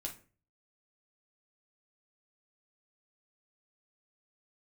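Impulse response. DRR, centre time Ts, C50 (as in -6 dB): 0.5 dB, 15 ms, 11.0 dB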